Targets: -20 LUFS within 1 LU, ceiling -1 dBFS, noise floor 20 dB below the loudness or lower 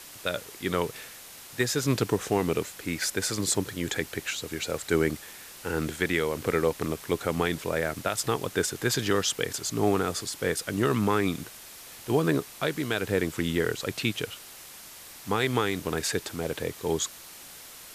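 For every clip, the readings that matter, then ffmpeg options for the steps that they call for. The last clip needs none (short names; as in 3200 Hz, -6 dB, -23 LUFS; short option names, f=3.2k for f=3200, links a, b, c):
noise floor -46 dBFS; noise floor target -49 dBFS; loudness -28.5 LUFS; peak -11.0 dBFS; loudness target -20.0 LUFS
-> -af "afftdn=nr=6:nf=-46"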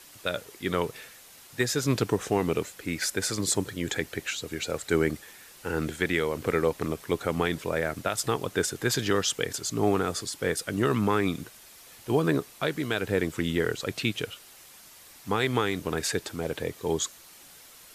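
noise floor -51 dBFS; loudness -28.5 LUFS; peak -11.0 dBFS; loudness target -20.0 LUFS
-> -af "volume=8.5dB"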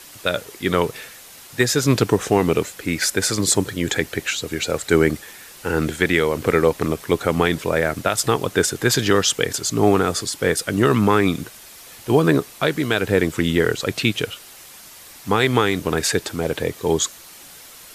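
loudness -20.0 LUFS; peak -2.5 dBFS; noise floor -43 dBFS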